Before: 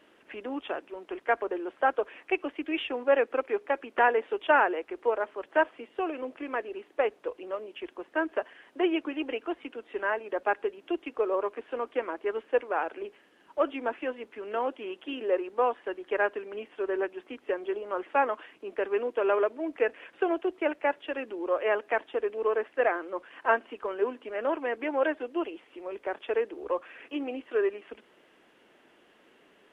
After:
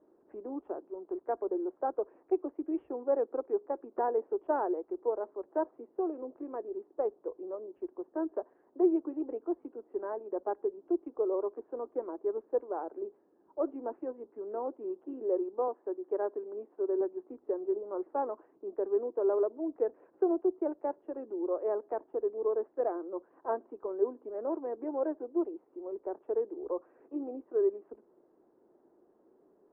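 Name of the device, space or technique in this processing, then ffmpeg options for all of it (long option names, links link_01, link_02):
under water: -filter_complex "[0:a]asettb=1/sr,asplit=3[link_01][link_02][link_03];[link_01]atrim=end=15.684[link_04];[link_02]atrim=start=15.68:end=17.01,asetpts=PTS-STARTPTS,afade=type=in:duration=0.004:curve=qsin,afade=type=out:start_time=1.326:duration=0.004:curve=qsin,highpass=210[link_05];[link_03]atrim=start=17.006[link_06];[link_04][link_05]acrossfade=duration=0.004:curve1=hsin:curve2=qsin[link_07];[link_07][link_06]acrossfade=duration=0.004:curve1=qsin:curve2=hsin,lowpass=frequency=970:width=0.5412,lowpass=frequency=970:width=1.3066,equalizer=frequency=360:width_type=o:width=0.56:gain=8.5,volume=-7dB"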